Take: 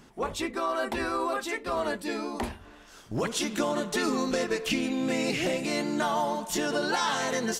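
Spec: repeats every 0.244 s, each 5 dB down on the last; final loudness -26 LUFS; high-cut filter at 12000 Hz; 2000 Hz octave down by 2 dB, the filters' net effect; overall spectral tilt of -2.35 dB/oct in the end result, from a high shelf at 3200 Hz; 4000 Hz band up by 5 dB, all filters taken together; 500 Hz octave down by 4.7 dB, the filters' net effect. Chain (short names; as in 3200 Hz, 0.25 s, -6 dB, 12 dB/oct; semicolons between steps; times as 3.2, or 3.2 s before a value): LPF 12000 Hz; bell 500 Hz -6 dB; bell 2000 Hz -5 dB; high shelf 3200 Hz +4.5 dB; bell 4000 Hz +4.5 dB; feedback echo 0.244 s, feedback 56%, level -5 dB; gain +2 dB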